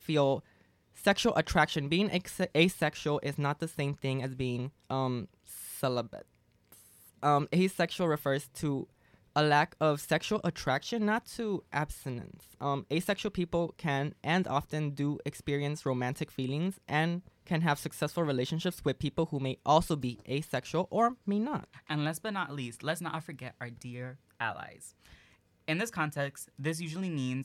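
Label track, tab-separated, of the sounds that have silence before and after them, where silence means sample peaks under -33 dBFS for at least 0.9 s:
7.230000	24.650000	sound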